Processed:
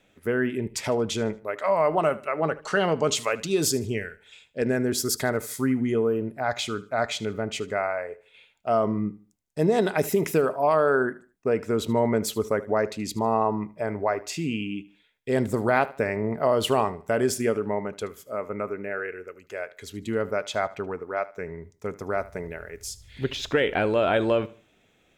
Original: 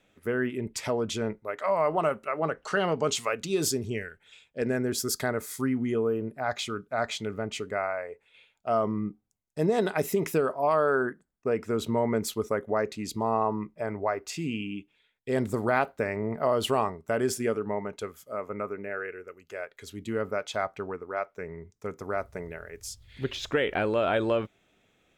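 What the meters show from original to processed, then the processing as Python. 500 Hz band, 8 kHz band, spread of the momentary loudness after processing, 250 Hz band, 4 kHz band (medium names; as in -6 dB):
+3.5 dB, +3.5 dB, 13 LU, +3.5 dB, +3.5 dB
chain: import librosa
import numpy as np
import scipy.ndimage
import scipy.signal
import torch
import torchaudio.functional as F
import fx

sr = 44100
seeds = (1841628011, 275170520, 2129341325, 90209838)

y = fx.peak_eq(x, sr, hz=1200.0, db=-3.0, octaves=0.28)
y = fx.echo_feedback(y, sr, ms=76, feedback_pct=31, wet_db=-19.0)
y = F.gain(torch.from_numpy(y), 3.5).numpy()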